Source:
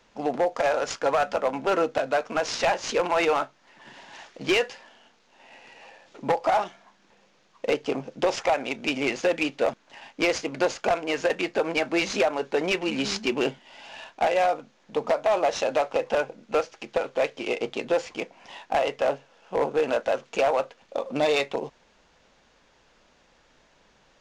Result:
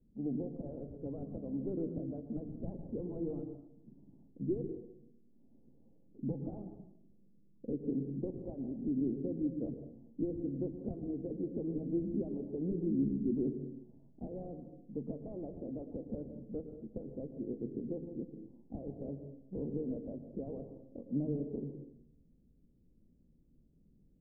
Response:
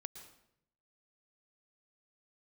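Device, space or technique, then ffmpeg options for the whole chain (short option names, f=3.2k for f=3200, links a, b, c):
next room: -filter_complex "[0:a]lowpass=f=270:w=0.5412,lowpass=f=270:w=1.3066[a];[1:a]atrim=start_sample=2205[b];[a][b]afir=irnorm=-1:irlink=0,volume=5.5dB"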